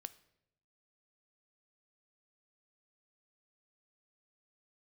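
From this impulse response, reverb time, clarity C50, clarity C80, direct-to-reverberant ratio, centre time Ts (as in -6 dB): 0.80 s, 18.0 dB, 21.0 dB, 13.5 dB, 3 ms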